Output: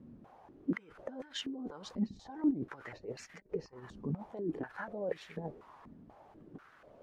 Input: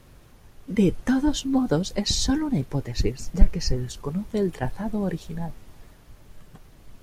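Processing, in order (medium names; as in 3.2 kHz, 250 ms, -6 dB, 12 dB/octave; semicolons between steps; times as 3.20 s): compressor with a negative ratio -30 dBFS, ratio -1; step-sequenced band-pass 4.1 Hz 230–1900 Hz; trim +3.5 dB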